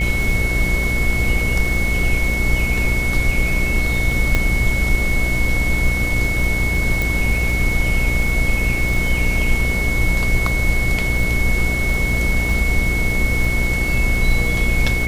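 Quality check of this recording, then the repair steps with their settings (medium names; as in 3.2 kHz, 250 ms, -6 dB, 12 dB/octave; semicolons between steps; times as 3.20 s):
buzz 60 Hz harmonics 12 -22 dBFS
crackle 25 per s -23 dBFS
whine 2.2 kHz -21 dBFS
4.35 s: pop -4 dBFS
7.02 s: pop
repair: de-click; de-hum 60 Hz, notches 12; band-stop 2.2 kHz, Q 30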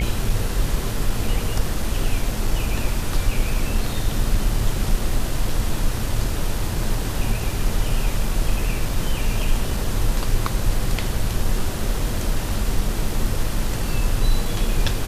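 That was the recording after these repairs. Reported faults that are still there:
nothing left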